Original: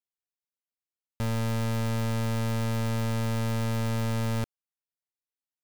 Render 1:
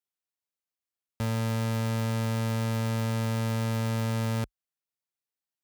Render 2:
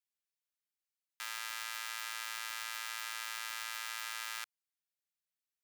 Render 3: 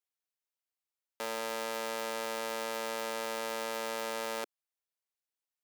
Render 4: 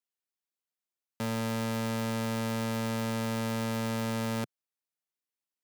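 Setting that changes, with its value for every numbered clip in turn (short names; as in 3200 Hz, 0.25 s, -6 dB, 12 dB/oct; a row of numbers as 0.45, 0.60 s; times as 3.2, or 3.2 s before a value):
HPF, cutoff: 42, 1300, 370, 140 Hz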